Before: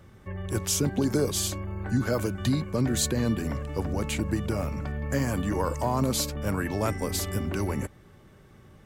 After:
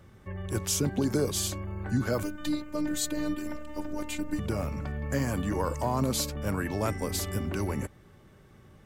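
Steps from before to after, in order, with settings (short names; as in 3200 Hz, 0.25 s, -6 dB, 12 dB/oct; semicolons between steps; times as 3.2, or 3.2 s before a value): 2.23–4.39 robotiser 300 Hz; gain -2 dB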